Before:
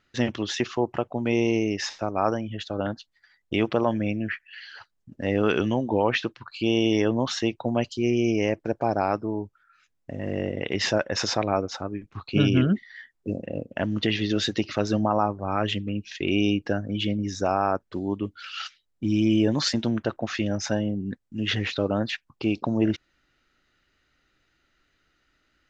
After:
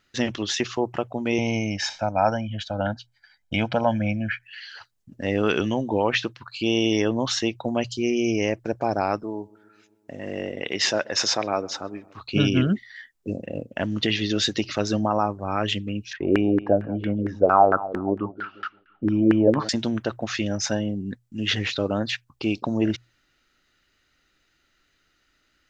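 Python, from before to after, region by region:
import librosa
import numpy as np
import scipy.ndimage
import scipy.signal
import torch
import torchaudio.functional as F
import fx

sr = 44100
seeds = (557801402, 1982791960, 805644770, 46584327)

y = fx.chain(x, sr, fx.high_shelf(hz=5300.0, db=-9.0),
    fx.comb(ms=1.3, depth=0.95), at=(1.38, 4.43))
y = fx.chain(y, sr, fx.highpass(hz=280.0, slope=6),
    fx.echo_filtered(ms=131, feedback_pct=69, hz=2100.0, wet_db=-23.0), at=(9.23, 12.21))
y = fx.chain(y, sr, fx.echo_bbd(ms=173, stages=4096, feedback_pct=34, wet_db=-16.0),
    fx.filter_lfo_lowpass(shape='saw_down', hz=4.4, low_hz=390.0, high_hz=1700.0, q=5.3), at=(16.13, 19.69))
y = fx.high_shelf(y, sr, hz=3800.0, db=8.0)
y = fx.hum_notches(y, sr, base_hz=60, count=2)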